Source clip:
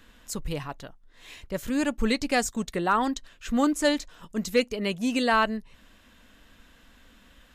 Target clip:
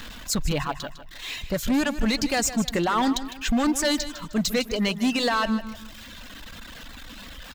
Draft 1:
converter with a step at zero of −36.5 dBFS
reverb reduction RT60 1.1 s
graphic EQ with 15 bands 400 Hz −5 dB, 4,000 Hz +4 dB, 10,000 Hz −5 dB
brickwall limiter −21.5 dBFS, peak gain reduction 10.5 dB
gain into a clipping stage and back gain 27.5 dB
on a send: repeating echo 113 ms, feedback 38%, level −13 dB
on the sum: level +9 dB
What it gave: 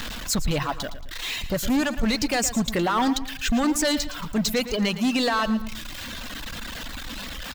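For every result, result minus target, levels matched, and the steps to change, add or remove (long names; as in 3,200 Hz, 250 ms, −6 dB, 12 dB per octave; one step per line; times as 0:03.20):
converter with a step at zero: distortion +8 dB; echo 41 ms early
change: converter with a step at zero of −45.5 dBFS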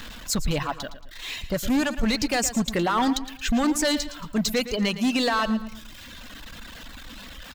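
echo 41 ms early
change: repeating echo 154 ms, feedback 38%, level −13 dB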